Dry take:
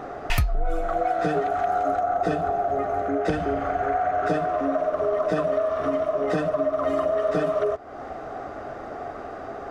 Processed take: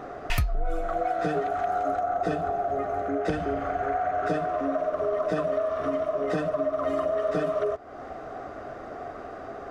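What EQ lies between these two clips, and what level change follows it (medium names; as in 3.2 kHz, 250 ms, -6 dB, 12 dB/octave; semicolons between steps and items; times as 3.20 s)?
band-stop 840 Hz, Q 12; -3.0 dB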